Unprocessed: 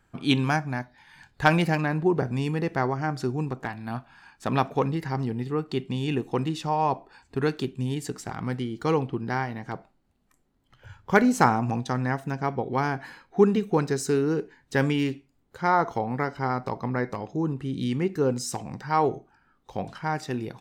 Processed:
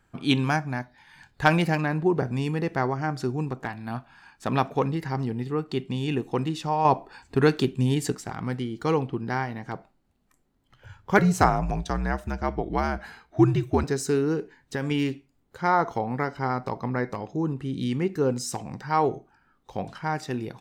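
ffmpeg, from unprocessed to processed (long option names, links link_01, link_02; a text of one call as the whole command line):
ffmpeg -i in.wav -filter_complex "[0:a]asettb=1/sr,asplit=3[link_01][link_02][link_03];[link_01]atrim=end=11.184[link_04];[link_02]atrim=start=11.18:end=13.84,asetpts=PTS-STARTPTS,afade=type=in:duration=0.004:curve=qsin,afade=type=out:start_time=2.656:duration=0.004:curve=qsin,afreqshift=-71[link_05];[link_03]atrim=start=13.836[link_06];[link_04][link_05]acrossfade=duration=0.004:curve1=hsin:curve2=qsin[link_07];[link_07][link_06]acrossfade=duration=0.004:curve1=qsin:curve2=hsin,asettb=1/sr,asplit=3[link_08][link_09][link_10];[link_08]atrim=end=14.354[link_11];[link_09]atrim=start=14.35:end=14.91,asetpts=PTS-STARTPTS,afade=type=in:duration=0.004:curve=qsin,afade=type=out:start_time=0.556:duration=0.004:curve=qsin,acompressor=threshold=-24dB:ratio=4:attack=3.2:release=140:knee=1:detection=peak[link_12];[link_10]atrim=start=14.906[link_13];[link_11][link_12]acrossfade=duration=0.004:curve1=hsin:curve2=qsin[link_14];[link_14][link_13]acrossfade=duration=0.004:curve1=qsin:curve2=hsin,asplit=3[link_15][link_16][link_17];[link_15]atrim=end=6.852[link_18];[link_16]atrim=start=6.848:end=8.152,asetpts=PTS-STARTPTS,volume=5.5dB[link_19];[link_17]atrim=start=8.148[link_20];[link_18][link_19]acrossfade=duration=0.004:curve1=hsin:curve2=hsin[link_21];[link_21][link_20]acrossfade=duration=0.004:curve1=hsin:curve2=hsin" out.wav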